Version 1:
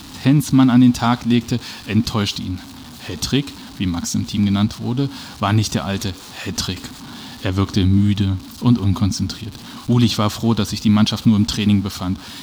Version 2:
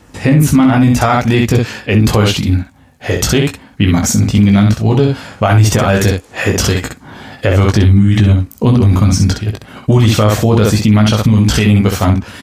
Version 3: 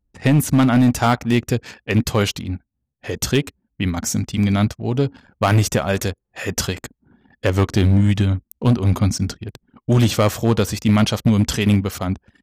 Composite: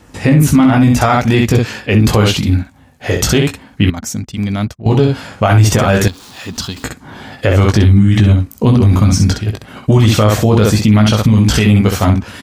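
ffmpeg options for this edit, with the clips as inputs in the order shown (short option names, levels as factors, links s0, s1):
-filter_complex "[1:a]asplit=3[s0][s1][s2];[s0]atrim=end=3.902[s3];[2:a]atrim=start=3.898:end=4.862[s4];[s1]atrim=start=4.858:end=6.082[s5];[0:a]atrim=start=6.078:end=6.842[s6];[s2]atrim=start=6.838[s7];[s3][s4]acrossfade=d=0.004:c1=hsin:c2=hsin[s8];[s8][s5]acrossfade=d=0.004:c1=hsin:c2=hsin[s9];[s9][s6]acrossfade=d=0.004:c1=hsin:c2=hsin[s10];[s10][s7]acrossfade=d=0.004:c1=hsin:c2=hsin"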